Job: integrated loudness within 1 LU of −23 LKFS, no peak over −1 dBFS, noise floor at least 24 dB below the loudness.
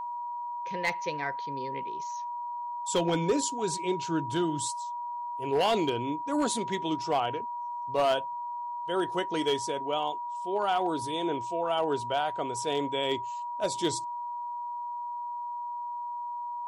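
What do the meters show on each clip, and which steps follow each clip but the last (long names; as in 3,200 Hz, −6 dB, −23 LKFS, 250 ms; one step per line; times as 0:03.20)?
share of clipped samples 0.4%; peaks flattened at −19.5 dBFS; interfering tone 960 Hz; level of the tone −33 dBFS; integrated loudness −31.0 LKFS; sample peak −19.5 dBFS; target loudness −23.0 LKFS
→ clipped peaks rebuilt −19.5 dBFS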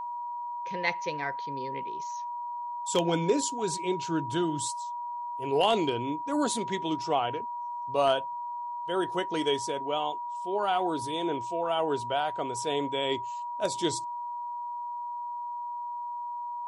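share of clipped samples 0.0%; interfering tone 960 Hz; level of the tone −33 dBFS
→ notch filter 960 Hz, Q 30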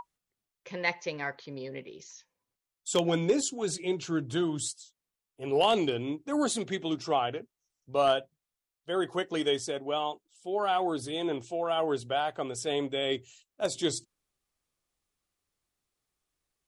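interfering tone none found; integrated loudness −30.5 LKFS; sample peak −10.0 dBFS; target loudness −23.0 LKFS
→ level +7.5 dB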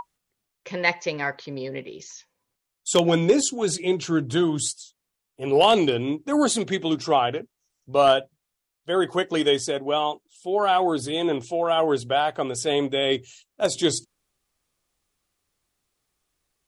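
integrated loudness −23.0 LKFS; sample peak −2.5 dBFS; background noise floor −82 dBFS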